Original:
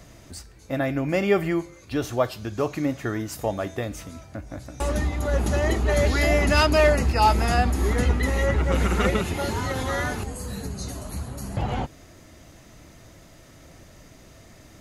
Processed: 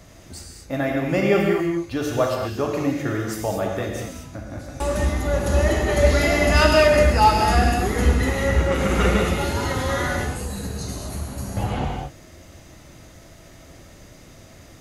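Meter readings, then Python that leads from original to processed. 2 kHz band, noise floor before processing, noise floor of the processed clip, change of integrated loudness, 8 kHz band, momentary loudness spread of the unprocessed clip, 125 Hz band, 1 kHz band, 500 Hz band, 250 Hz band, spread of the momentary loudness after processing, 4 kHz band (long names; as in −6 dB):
+3.0 dB, −50 dBFS, −46 dBFS, +3.0 dB, +3.5 dB, 15 LU, +2.5 dB, +3.5 dB, +4.0 dB, +3.0 dB, 15 LU, +3.5 dB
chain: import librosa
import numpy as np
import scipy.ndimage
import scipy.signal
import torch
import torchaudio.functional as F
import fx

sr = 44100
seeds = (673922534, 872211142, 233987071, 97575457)

y = fx.rev_gated(x, sr, seeds[0], gate_ms=260, shape='flat', drr_db=-0.5)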